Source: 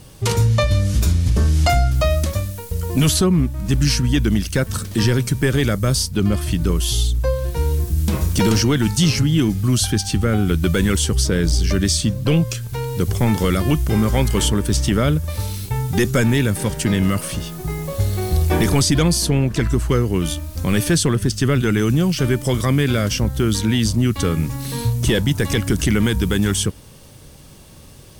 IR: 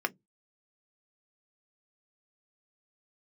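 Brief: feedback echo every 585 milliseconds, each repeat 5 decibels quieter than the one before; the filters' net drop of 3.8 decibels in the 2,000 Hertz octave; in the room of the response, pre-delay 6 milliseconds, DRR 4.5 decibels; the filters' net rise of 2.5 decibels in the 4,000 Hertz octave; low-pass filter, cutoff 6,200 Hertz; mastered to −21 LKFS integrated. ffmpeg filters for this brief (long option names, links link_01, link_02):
-filter_complex "[0:a]lowpass=6200,equalizer=frequency=2000:width_type=o:gain=-6.5,equalizer=frequency=4000:width_type=o:gain=6,aecho=1:1:585|1170|1755|2340|2925|3510|4095:0.562|0.315|0.176|0.0988|0.0553|0.031|0.0173,asplit=2[link_01][link_02];[1:a]atrim=start_sample=2205,adelay=6[link_03];[link_02][link_03]afir=irnorm=-1:irlink=0,volume=-12dB[link_04];[link_01][link_04]amix=inputs=2:normalize=0,volume=-4dB"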